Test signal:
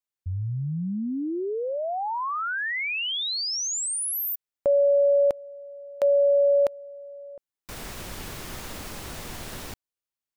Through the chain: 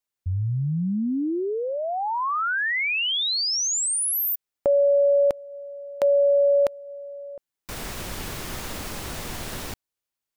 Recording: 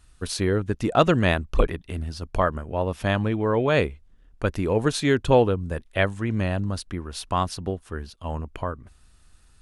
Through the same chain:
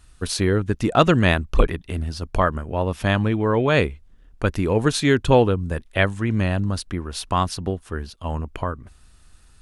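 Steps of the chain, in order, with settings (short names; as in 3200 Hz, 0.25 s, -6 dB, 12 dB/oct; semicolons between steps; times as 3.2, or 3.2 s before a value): dynamic EQ 580 Hz, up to -3 dB, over -34 dBFS, Q 1.2; gain +4 dB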